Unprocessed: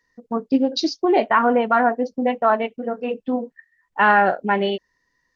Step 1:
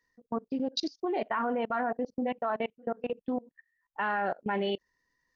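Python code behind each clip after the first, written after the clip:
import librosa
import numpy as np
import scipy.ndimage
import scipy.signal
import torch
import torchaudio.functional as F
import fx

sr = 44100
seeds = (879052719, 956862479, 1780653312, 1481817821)

y = fx.level_steps(x, sr, step_db=24)
y = F.gain(torch.from_numpy(y), -5.5).numpy()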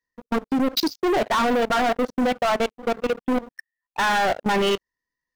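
y = fx.leveller(x, sr, passes=5)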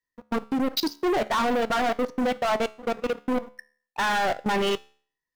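y = fx.comb_fb(x, sr, f0_hz=72.0, decay_s=0.48, harmonics='all', damping=0.0, mix_pct=40)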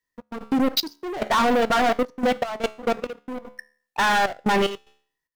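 y = fx.step_gate(x, sr, bpm=74, pattern='x.xx..xxxx.', floor_db=-12.0, edge_ms=4.5)
y = F.gain(torch.from_numpy(y), 4.5).numpy()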